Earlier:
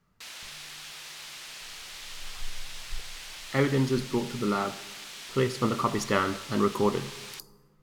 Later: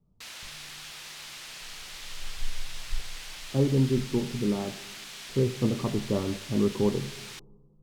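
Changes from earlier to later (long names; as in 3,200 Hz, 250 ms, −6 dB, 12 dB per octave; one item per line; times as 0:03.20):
speech: add Bessel low-pass filter 550 Hz, order 8
master: add low-shelf EQ 200 Hz +5.5 dB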